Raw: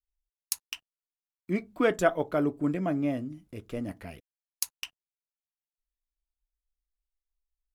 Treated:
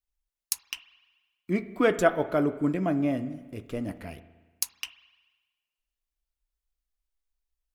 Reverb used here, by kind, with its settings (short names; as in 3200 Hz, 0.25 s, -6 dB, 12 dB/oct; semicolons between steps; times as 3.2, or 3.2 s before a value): spring tank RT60 1.3 s, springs 36/60 ms, chirp 45 ms, DRR 13.5 dB; gain +2 dB